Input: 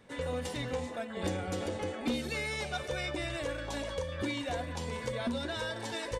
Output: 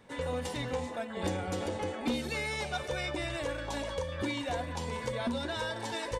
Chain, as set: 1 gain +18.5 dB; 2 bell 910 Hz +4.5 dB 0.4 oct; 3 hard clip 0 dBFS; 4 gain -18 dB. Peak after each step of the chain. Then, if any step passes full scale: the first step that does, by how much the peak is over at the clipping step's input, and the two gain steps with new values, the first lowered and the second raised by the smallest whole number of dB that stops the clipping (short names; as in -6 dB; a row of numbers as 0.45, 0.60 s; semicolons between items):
-6.5, -5.5, -5.5, -23.5 dBFS; no overload